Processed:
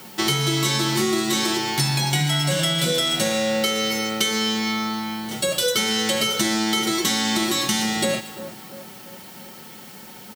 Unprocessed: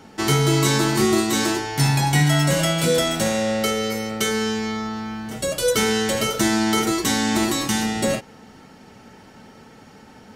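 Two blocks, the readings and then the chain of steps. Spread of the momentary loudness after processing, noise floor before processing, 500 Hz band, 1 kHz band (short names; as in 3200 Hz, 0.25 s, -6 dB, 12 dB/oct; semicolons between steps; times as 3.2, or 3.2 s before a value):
19 LU, -47 dBFS, -3.0 dB, -2.0 dB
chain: bell 3700 Hz +8 dB 1.3 oct; comb 5.5 ms, depth 43%; on a send: split-band echo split 1500 Hz, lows 0.341 s, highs 0.116 s, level -16 dB; on the sum: requantised 8-bit, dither triangular; HPF 93 Hz; high shelf 12000 Hz +6.5 dB; compressor, threshold -18 dBFS, peak gain reduction 7.5 dB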